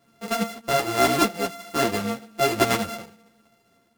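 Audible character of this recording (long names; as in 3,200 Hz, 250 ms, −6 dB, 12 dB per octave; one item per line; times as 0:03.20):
a buzz of ramps at a fixed pitch in blocks of 64 samples
tremolo triangle 1.2 Hz, depth 60%
a shimmering, thickened sound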